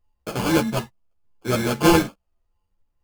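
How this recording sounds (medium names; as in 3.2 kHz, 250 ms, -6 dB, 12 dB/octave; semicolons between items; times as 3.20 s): a buzz of ramps at a fixed pitch in blocks of 16 samples; phasing stages 4, 0.79 Hz, lowest notch 350–2100 Hz; aliases and images of a low sample rate 1.9 kHz, jitter 0%; a shimmering, thickened sound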